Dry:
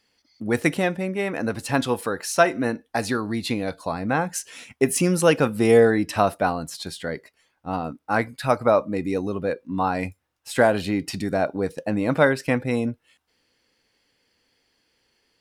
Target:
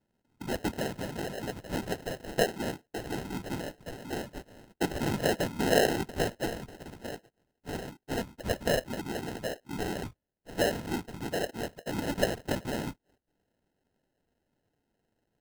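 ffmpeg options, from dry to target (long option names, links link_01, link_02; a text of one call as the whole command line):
ffmpeg -i in.wav -filter_complex "[0:a]asplit=3[link_01][link_02][link_03];[link_01]afade=type=out:start_time=3.84:duration=0.02[link_04];[link_02]highpass=frequency=550:poles=1,afade=type=in:start_time=3.84:duration=0.02,afade=type=out:start_time=4.27:duration=0.02[link_05];[link_03]afade=type=in:start_time=4.27:duration=0.02[link_06];[link_04][link_05][link_06]amix=inputs=3:normalize=0,afftfilt=real='hypot(re,im)*cos(2*PI*random(0))':imag='hypot(re,im)*sin(2*PI*random(1))':win_size=512:overlap=0.75,acrusher=samples=38:mix=1:aa=0.000001,volume=-4dB" out.wav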